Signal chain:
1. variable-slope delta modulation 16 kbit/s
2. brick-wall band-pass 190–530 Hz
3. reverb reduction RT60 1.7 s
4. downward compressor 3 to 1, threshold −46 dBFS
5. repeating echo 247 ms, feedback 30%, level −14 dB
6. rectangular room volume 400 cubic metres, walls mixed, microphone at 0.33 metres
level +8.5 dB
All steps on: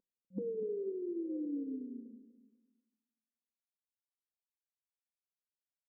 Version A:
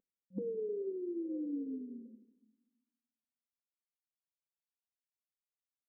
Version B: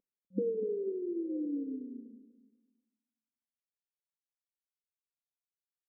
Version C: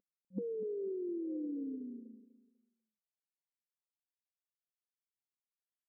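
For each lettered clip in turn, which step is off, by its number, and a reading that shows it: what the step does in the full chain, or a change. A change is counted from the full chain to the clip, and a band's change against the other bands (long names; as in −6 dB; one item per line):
5, echo-to-direct ratio −9.0 dB to −11.0 dB
4, change in momentary loudness spread +1 LU
6, echo-to-direct ratio −9.0 dB to −13.5 dB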